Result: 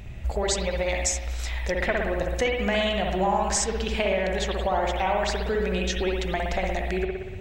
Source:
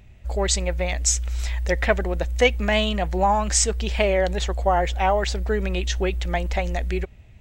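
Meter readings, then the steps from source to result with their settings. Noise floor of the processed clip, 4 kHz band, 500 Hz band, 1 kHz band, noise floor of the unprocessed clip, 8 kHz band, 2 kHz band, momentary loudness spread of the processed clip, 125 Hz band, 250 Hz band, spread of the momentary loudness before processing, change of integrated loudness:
-35 dBFS, -2.5 dB, -2.0 dB, -3.0 dB, -47 dBFS, -5.5 dB, -2.0 dB, 5 LU, -5.5 dB, -1.0 dB, 6 LU, -3.0 dB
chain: compression 4:1, threshold -34 dBFS, peak gain reduction 18 dB; spring tank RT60 1.2 s, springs 59 ms, chirp 55 ms, DRR 0 dB; trim +8.5 dB

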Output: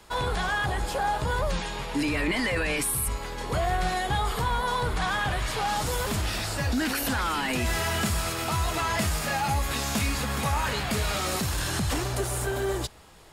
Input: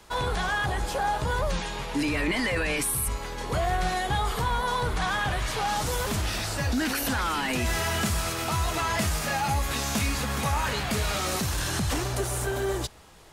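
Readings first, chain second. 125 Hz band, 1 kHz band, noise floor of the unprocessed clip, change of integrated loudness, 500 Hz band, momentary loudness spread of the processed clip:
0.0 dB, 0.0 dB, -35 dBFS, 0.0 dB, 0.0 dB, 3 LU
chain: band-stop 6 kHz, Q 17

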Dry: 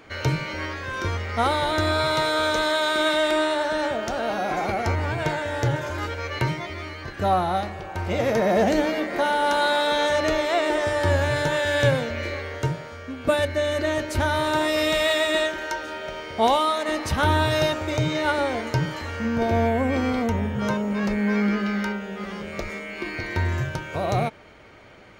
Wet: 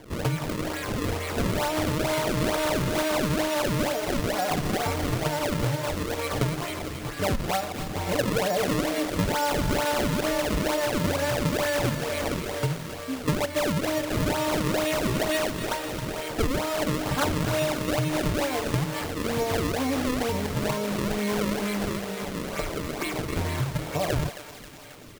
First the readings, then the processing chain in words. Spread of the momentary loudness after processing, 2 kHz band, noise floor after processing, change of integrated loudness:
6 LU, -5.5 dB, -36 dBFS, -3.0 dB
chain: comb 6.8 ms, depth 79%; compression 5:1, threshold -23 dBFS, peak gain reduction 11.5 dB; decimation with a swept rate 33×, swing 160% 2.2 Hz; on a send: thinning echo 268 ms, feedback 70%, high-pass 1.2 kHz, level -9 dB

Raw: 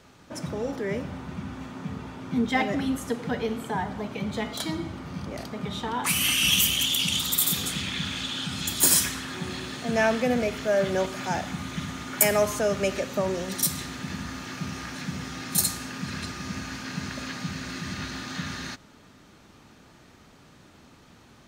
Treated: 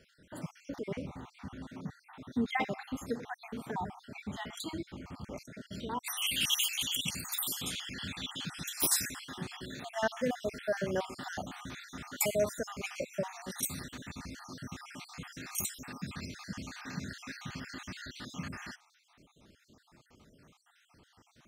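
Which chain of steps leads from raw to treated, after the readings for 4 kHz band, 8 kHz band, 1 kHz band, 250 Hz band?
-9.0 dB, -9.5 dB, -9.0 dB, -10.0 dB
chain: random holes in the spectrogram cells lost 55%; trim -6 dB

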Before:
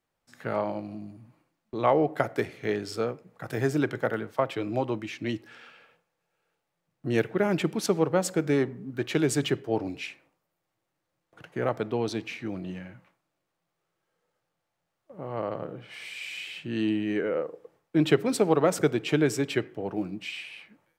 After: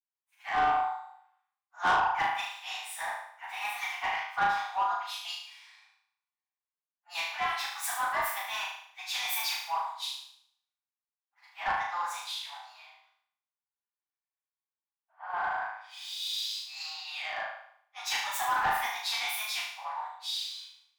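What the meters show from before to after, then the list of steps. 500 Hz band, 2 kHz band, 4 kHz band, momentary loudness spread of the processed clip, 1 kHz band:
-19.0 dB, +3.0 dB, +5.0 dB, 14 LU, +5.0 dB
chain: frequency axis rescaled in octaves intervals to 119%; steep high-pass 770 Hz 72 dB/octave; treble shelf 2.7 kHz -8 dB; in parallel at +0.5 dB: compression, threshold -41 dBFS, peak gain reduction 16.5 dB; on the sum: flutter echo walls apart 6.4 m, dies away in 0.86 s; saturation -28 dBFS, distortion -12 dB; three bands expanded up and down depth 70%; trim +3.5 dB

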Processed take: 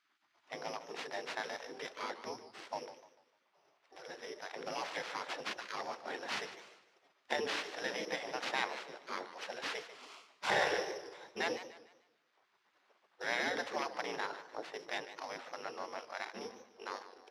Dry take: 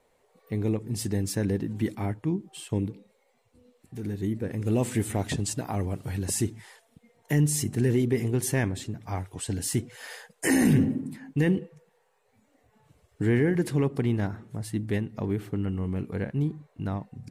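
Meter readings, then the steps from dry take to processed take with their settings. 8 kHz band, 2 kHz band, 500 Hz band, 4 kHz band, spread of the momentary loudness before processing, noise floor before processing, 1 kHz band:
-17.0 dB, -1.0 dB, -9.5 dB, -0.5 dB, 11 LU, -68 dBFS, +1.5 dB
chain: sorted samples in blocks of 8 samples; spectral gate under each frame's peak -20 dB weak; high-pass 320 Hz 12 dB/octave; tape spacing loss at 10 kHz 28 dB; modulated delay 149 ms, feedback 36%, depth 155 cents, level -13 dB; trim +8.5 dB

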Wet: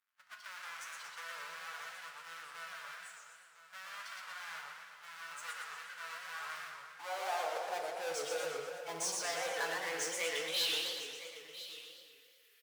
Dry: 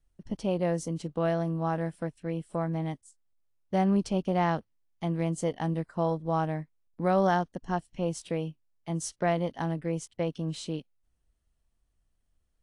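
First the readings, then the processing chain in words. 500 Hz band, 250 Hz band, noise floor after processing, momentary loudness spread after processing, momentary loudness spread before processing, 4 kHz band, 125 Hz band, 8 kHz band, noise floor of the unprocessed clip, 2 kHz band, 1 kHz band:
-12.0 dB, -28.5 dB, -64 dBFS, 15 LU, 10 LU, +7.5 dB, -35.0 dB, +2.5 dB, -75 dBFS, +1.5 dB, -9.5 dB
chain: expander on every frequency bin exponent 1.5; band-stop 900 Hz; band-pass sweep 220 Hz -> 2.1 kHz, 6.31–10.21 s; peaking EQ 470 Hz +7 dB 0.25 oct; reverse; compression, threshold -44 dBFS, peak gain reduction 18 dB; reverse; power-law waveshaper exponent 0.5; high-pass sweep 1.4 kHz -> 310 Hz, 6.40–8.15 s; amplifier tone stack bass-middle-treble 10-0-10; flange 0.44 Hz, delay 6.2 ms, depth 4.2 ms, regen +66%; on a send: delay 1004 ms -14 dB; on the sum: FDN reverb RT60 1.6 s, low-frequency decay 0.95×, high-frequency decay 0.65×, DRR 2.5 dB; modulated delay 119 ms, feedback 59%, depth 219 cents, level -3.5 dB; trim +17.5 dB

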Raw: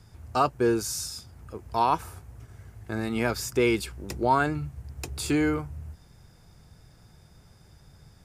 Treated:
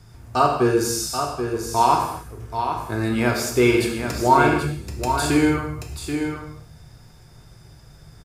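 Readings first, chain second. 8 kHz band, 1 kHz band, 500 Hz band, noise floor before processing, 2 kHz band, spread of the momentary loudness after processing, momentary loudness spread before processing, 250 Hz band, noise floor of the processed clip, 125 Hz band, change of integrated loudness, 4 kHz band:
+7.0 dB, +8.0 dB, +7.0 dB, -55 dBFS, +7.0 dB, 11 LU, 19 LU, +7.0 dB, -48 dBFS, +7.5 dB, +6.0 dB, +7.0 dB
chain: on a send: delay 782 ms -7.5 dB; on the sum: gated-style reverb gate 300 ms falling, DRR 0.5 dB; trim +3.5 dB

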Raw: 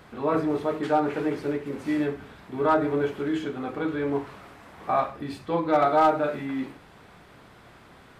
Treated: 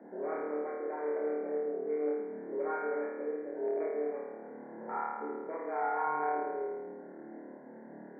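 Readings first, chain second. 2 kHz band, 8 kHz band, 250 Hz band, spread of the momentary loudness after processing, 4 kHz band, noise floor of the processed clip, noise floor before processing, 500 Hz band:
-9.0 dB, no reading, -14.5 dB, 15 LU, under -40 dB, -50 dBFS, -52 dBFS, -7.0 dB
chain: local Wiener filter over 41 samples; compression 2:1, threshold -45 dBFS, peak gain reduction 15.5 dB; peak limiter -31.5 dBFS, peak gain reduction 6 dB; frequency shift +150 Hz; brick-wall FIR low-pass 2.4 kHz; flutter echo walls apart 4.6 m, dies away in 1.4 s

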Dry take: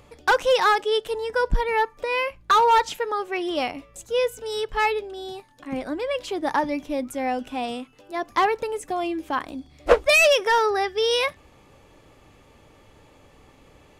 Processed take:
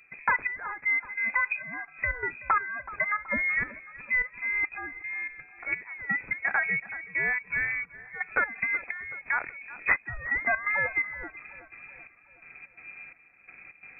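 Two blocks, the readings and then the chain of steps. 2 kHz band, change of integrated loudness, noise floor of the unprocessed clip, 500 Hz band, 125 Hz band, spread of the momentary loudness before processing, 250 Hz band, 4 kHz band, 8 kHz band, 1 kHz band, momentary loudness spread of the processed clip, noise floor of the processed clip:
+1.0 dB, -5.5 dB, -54 dBFS, -21.0 dB, -6.5 dB, 15 LU, -15.5 dB, under -40 dB, under -40 dB, -11.5 dB, 19 LU, -58 dBFS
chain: peaking EQ 100 Hz +14.5 dB 0.52 oct; compression 3:1, threshold -25 dBFS, peak gain reduction 11.5 dB; trance gate ".xxx...xx" 128 bpm -12 dB; thinning echo 376 ms, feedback 57%, high-pass 610 Hz, level -15.5 dB; frequency inversion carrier 2.5 kHz; trim +1 dB

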